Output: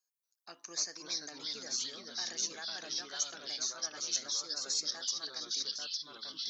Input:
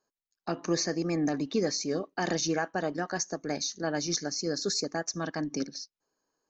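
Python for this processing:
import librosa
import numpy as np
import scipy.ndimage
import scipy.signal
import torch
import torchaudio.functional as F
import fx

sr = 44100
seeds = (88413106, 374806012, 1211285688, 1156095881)

y = np.diff(x, prepend=0.0)
y = fx.echo_pitch(y, sr, ms=234, semitones=-2, count=3, db_per_echo=-3.0)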